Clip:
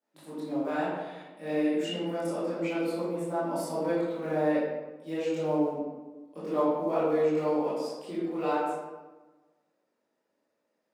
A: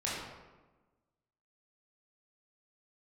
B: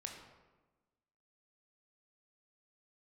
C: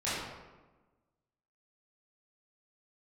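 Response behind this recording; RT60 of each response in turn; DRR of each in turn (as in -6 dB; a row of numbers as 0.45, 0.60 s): C; 1.2, 1.2, 1.2 s; -7.5, 1.0, -12.5 dB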